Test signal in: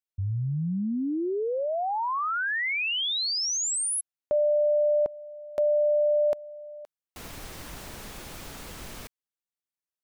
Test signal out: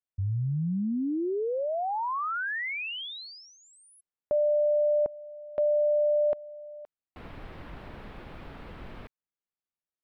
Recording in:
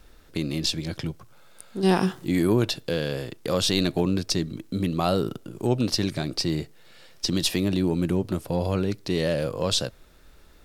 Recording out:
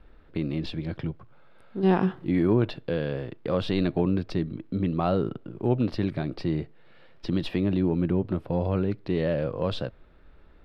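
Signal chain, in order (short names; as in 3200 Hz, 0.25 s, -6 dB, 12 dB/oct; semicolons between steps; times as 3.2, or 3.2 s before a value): air absorption 450 m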